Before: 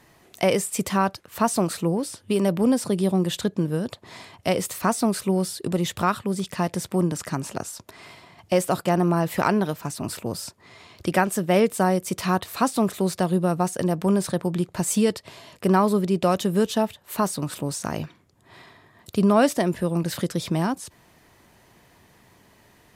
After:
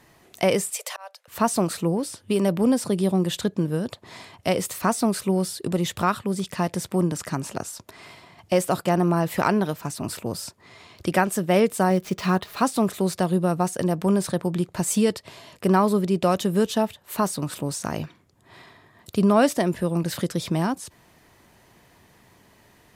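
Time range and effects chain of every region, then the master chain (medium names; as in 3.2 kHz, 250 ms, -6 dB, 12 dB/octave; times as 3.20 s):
0.71–1.28 s: steep high-pass 500 Hz 72 dB/octave + peaking EQ 1.2 kHz -4 dB 1.1 oct + slow attack 424 ms
11.90–12.61 s: median filter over 5 samples + comb 4.9 ms, depth 34%
whole clip: none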